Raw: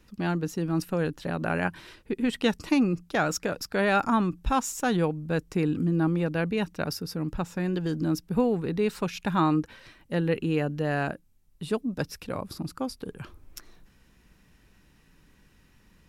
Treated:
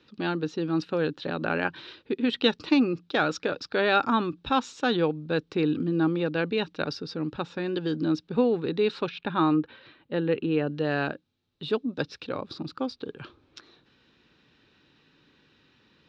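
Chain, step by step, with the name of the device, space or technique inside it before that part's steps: 9.09–10.67 air absorption 250 m; kitchen radio (speaker cabinet 170–4400 Hz, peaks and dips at 190 Hz -10 dB, 680 Hz -6 dB, 1000 Hz -4 dB, 2000 Hz -6 dB, 3800 Hz +7 dB); gain +3.5 dB

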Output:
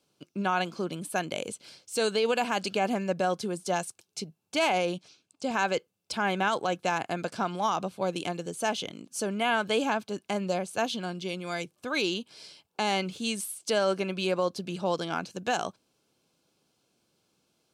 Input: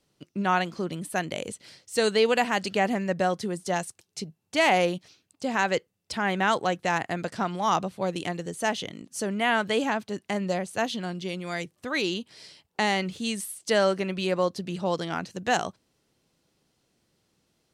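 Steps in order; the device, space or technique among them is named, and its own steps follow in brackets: PA system with an anti-feedback notch (HPF 190 Hz 6 dB/oct; Butterworth band-stop 1900 Hz, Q 5.8; limiter -16.5 dBFS, peak gain reduction 6.5 dB); 4.72–5.51 Chebyshev band-pass 110–8800 Hz, order 2

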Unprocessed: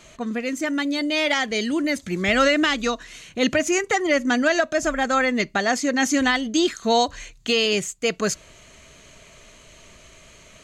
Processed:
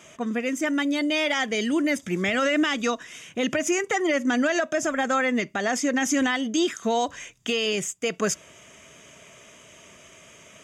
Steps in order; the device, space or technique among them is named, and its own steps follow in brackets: PA system with an anti-feedback notch (HPF 130 Hz 12 dB/oct; Butterworth band-stop 4200 Hz, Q 4.9; limiter -15 dBFS, peak gain reduction 7.5 dB)

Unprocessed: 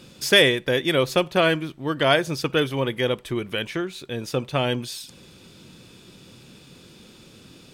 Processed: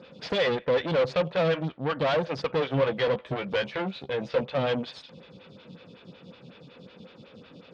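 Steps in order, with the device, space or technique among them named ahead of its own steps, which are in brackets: vibe pedal into a guitar amplifier (photocell phaser 5.4 Hz; tube stage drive 31 dB, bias 0.75; speaker cabinet 81–4100 Hz, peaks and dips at 170 Hz +5 dB, 350 Hz -9 dB, 510 Hz +7 dB); 2.68–4.42 doubler 15 ms -6 dB; gain +7 dB

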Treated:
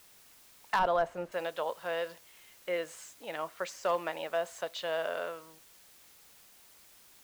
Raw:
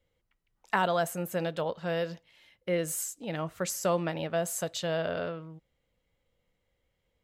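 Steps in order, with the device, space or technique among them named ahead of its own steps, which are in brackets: drive-through speaker (BPF 540–3600 Hz; bell 1000 Hz +4 dB 0.21 oct; hard clip -21 dBFS, distortion -18 dB; white noise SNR 22 dB); 0.79–1.32 tilt -3 dB/oct

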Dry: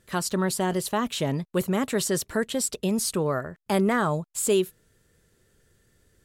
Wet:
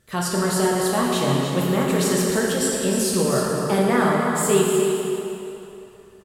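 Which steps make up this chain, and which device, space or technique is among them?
cave (echo 0.307 s -8 dB; reverb RT60 3.0 s, pre-delay 3 ms, DRR -4 dB)

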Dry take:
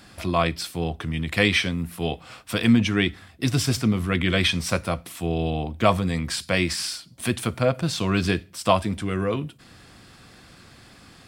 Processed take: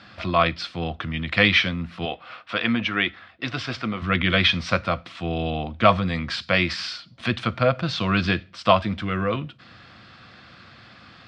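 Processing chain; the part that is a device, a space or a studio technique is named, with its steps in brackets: 2.05–4.02 tone controls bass -12 dB, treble -8 dB; guitar cabinet (speaker cabinet 100–4400 Hz, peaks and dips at 160 Hz -5 dB, 280 Hz -6 dB, 410 Hz -9 dB, 870 Hz -4 dB, 1300 Hz +4 dB); gain +3.5 dB

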